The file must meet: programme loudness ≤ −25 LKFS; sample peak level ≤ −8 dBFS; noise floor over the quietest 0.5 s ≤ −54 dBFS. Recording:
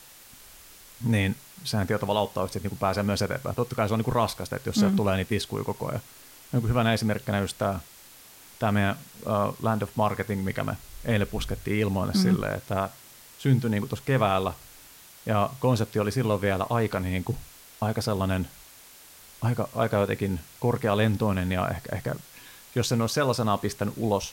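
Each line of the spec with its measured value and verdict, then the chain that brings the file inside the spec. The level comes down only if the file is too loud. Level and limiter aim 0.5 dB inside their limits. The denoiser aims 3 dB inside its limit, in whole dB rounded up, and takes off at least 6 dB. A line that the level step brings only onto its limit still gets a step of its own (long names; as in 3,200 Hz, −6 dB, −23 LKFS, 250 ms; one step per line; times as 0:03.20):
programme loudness −27.0 LKFS: in spec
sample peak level −10.0 dBFS: in spec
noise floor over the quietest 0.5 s −50 dBFS: out of spec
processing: broadband denoise 7 dB, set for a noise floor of −50 dBFS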